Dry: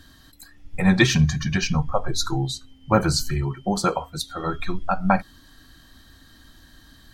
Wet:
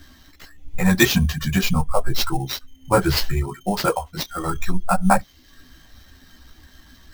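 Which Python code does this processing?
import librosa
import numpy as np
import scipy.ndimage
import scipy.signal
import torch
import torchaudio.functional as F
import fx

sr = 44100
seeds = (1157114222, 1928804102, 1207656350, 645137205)

y = fx.dereverb_blind(x, sr, rt60_s=0.51)
y = fx.chorus_voices(y, sr, voices=4, hz=0.74, base_ms=14, depth_ms=2.8, mix_pct=50)
y = fx.sample_hold(y, sr, seeds[0], rate_hz=9500.0, jitter_pct=0)
y = y * 10.0 ** (5.5 / 20.0)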